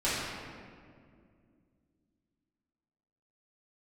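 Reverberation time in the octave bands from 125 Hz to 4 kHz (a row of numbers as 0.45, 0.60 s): 3.1, 3.3, 2.5, 1.9, 1.7, 1.2 s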